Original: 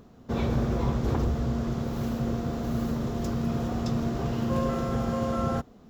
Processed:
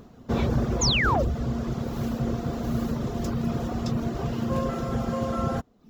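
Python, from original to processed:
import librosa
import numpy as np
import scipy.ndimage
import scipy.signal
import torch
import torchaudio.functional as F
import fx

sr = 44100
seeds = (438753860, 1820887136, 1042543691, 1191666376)

y = fx.rider(x, sr, range_db=10, speed_s=2.0)
y = fx.dereverb_blind(y, sr, rt60_s=0.62)
y = fx.spec_paint(y, sr, seeds[0], shape='fall', start_s=0.81, length_s=0.42, low_hz=490.0, high_hz=7200.0, level_db=-26.0)
y = F.gain(torch.from_numpy(y), 2.0).numpy()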